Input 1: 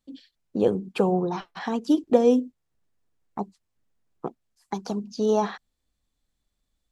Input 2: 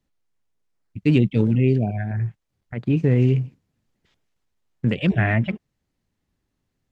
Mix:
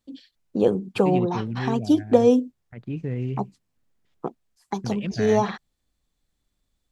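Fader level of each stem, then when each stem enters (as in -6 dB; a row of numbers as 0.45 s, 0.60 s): +2.0 dB, -11.0 dB; 0.00 s, 0.00 s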